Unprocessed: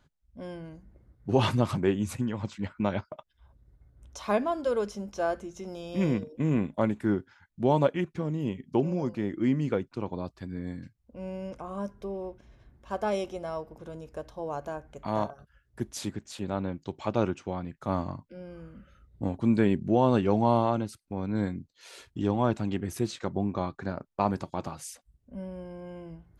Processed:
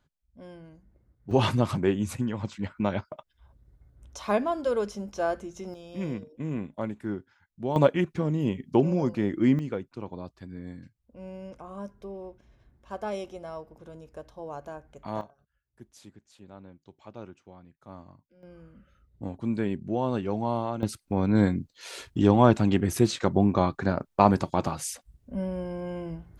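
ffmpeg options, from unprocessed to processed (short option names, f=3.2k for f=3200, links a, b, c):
-af "asetnsamples=n=441:p=0,asendcmd='1.31 volume volume 1dB;5.74 volume volume -6dB;7.76 volume volume 4dB;9.59 volume volume -4dB;15.21 volume volume -16dB;18.43 volume volume -5dB;20.83 volume volume 7.5dB',volume=-6dB"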